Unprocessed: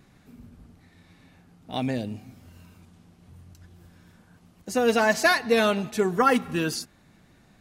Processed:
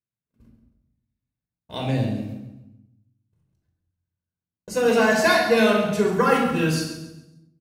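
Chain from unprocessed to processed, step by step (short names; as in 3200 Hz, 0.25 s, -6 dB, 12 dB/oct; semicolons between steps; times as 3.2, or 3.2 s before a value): HPF 43 Hz 12 dB/oct; gate -44 dBFS, range -43 dB; feedback echo 0.137 s, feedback 34%, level -11 dB; shoebox room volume 2000 m³, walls furnished, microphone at 5.1 m; gain -2.5 dB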